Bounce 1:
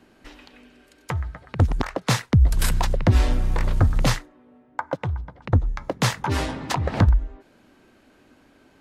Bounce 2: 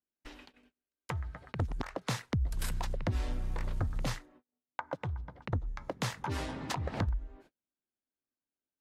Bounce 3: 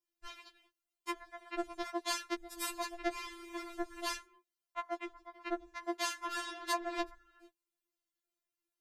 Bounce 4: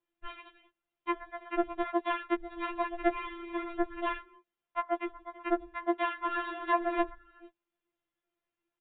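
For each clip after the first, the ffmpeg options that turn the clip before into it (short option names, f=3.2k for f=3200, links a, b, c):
-af "agate=range=-40dB:threshold=-47dB:ratio=16:detection=peak,acompressor=threshold=-32dB:ratio=2,volume=-5dB"
-af "afftfilt=real='re*4*eq(mod(b,16),0)':imag='im*4*eq(mod(b,16),0)':win_size=2048:overlap=0.75,volume=5dB"
-filter_complex "[0:a]aemphasis=mode=reproduction:type=75fm,acrossover=split=2900[a][b];[b]acompressor=threshold=-59dB:ratio=4:attack=1:release=60[c];[a][c]amix=inputs=2:normalize=0,aresample=8000,aresample=44100,volume=7.5dB"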